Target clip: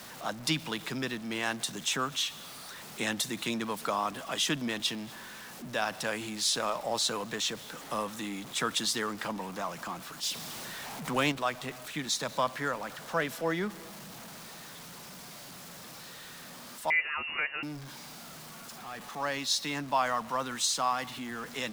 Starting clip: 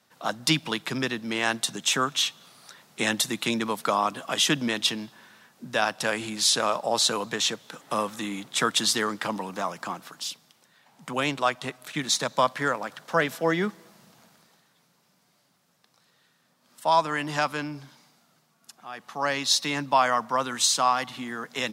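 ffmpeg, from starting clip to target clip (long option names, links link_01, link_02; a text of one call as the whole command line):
ffmpeg -i in.wav -filter_complex "[0:a]aeval=exprs='val(0)+0.5*0.0211*sgn(val(0))':channel_layout=same,asettb=1/sr,asplit=3[link_01][link_02][link_03];[link_01]atrim=end=10.234[link_04];[link_02]atrim=start=10.23:end=11.32,asetpts=PTS-STARTPTS,afade=type=in:duration=0.004:curve=qsin,afade=type=out:start_time=1.086:duration=0.004:curve=qsin,acontrast=35[link_05];[link_03]atrim=start=11.316[link_06];[link_04][link_05]acrossfade=duration=0.004:curve1=hsin:curve2=qsin[link_07];[link_07][link_06]acrossfade=duration=0.004:curve1=qsin:curve2=hsin,asettb=1/sr,asplit=3[link_08][link_09][link_10];[link_08]atrim=end=16.904[link_11];[link_09]atrim=start=16.9:end=17.63,asetpts=PTS-STARTPTS,afade=type=in:duration=0.004:curve=qsin,afade=type=out:start_time=0.726:duration=0.004:curve=qsin,lowpass=frequency=2600:width_type=q:width=0.5098,lowpass=frequency=2600:width_type=q:width=0.6013,lowpass=frequency=2600:width_type=q:width=0.9,lowpass=frequency=2600:width_type=q:width=2.563,afreqshift=-3000[link_12];[link_10]atrim=start=17.626[link_13];[link_11][link_12]acrossfade=duration=0.004:curve1=hsin:curve2=qsin[link_14];[link_14][link_13]acrossfade=duration=0.004:curve1=qsin:curve2=hsin,volume=-7.5dB" out.wav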